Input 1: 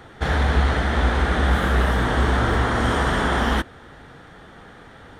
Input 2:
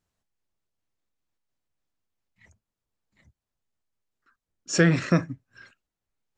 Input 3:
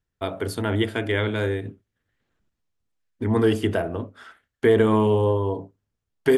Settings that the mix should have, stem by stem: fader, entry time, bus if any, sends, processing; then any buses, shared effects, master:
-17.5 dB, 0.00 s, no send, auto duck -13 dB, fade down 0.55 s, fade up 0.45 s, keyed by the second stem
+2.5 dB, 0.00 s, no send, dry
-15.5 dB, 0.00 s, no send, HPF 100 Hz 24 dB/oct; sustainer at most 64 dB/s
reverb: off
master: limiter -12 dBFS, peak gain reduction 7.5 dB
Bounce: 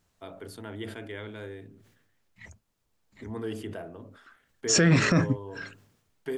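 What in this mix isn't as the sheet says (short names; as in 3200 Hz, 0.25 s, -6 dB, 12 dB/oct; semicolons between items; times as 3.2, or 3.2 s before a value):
stem 1: muted; stem 2 +2.5 dB -> +9.5 dB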